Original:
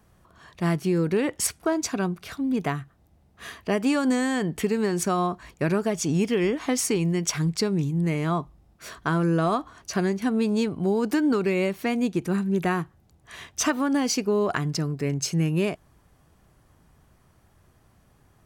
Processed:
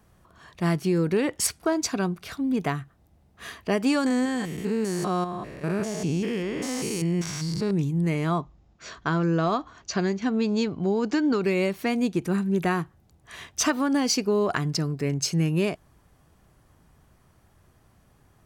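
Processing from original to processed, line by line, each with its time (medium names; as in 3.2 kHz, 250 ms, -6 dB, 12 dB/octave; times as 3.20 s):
4.06–7.71 s: spectrogram pixelated in time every 200 ms
8.40–11.43 s: elliptic low-pass 7.1 kHz
whole clip: dynamic bell 4.6 kHz, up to +4 dB, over -48 dBFS, Q 2.9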